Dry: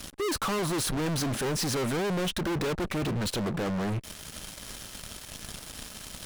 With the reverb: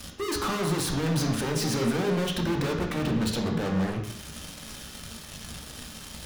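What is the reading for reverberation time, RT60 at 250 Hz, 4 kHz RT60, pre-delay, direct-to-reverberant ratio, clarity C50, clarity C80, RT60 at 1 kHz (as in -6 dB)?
0.70 s, 0.70 s, 0.70 s, 3 ms, 1.0 dB, 5.5 dB, 8.0 dB, 0.70 s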